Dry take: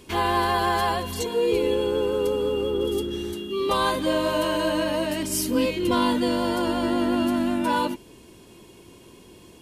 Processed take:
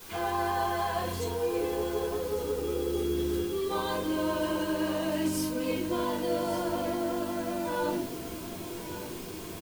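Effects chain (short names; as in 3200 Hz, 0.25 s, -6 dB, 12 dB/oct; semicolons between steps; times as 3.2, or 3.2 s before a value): HPF 63 Hz; high shelf 4200 Hz -5 dB; reverse; compressor 10:1, threshold -36 dBFS, peak gain reduction 18 dB; reverse; added noise white -53 dBFS; on a send: echo 1.156 s -12.5 dB; on the sum: shoebox room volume 220 m³, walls furnished, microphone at 4.9 m; gain -2 dB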